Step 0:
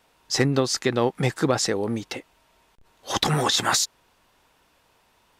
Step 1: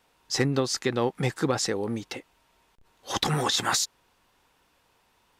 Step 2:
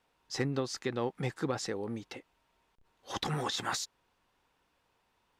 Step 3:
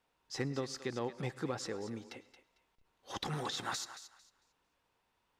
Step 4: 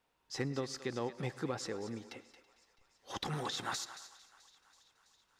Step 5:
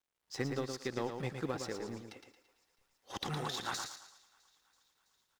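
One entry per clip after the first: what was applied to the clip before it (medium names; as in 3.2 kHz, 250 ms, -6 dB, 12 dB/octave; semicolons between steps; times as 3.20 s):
band-stop 630 Hz, Q 14; trim -3.5 dB
treble shelf 5.6 kHz -7 dB; trim -7.5 dB
thinning echo 225 ms, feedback 23%, high-pass 730 Hz, level -11.5 dB; on a send at -19 dB: reverberation RT60 0.50 s, pre-delay 96 ms; on the sum: trim -4.5 dB
thinning echo 329 ms, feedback 73%, high-pass 670 Hz, level -21.5 dB
companding laws mixed up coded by A; delay 114 ms -6.5 dB; trim +2 dB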